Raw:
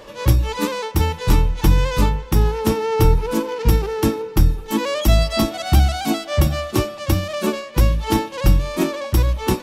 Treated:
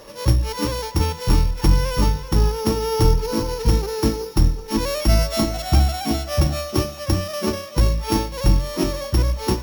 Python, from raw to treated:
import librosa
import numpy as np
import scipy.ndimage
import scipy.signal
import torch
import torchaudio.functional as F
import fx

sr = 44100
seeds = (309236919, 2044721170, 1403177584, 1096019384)

y = np.r_[np.sort(x[:len(x) // 8 * 8].reshape(-1, 8), axis=1).ravel(), x[len(x) // 8 * 8:]]
y = y + 10.0 ** (-12.5 / 20.0) * np.pad(y, (int(382 * sr / 1000.0), 0))[:len(y)]
y = F.gain(torch.from_numpy(y), -2.0).numpy()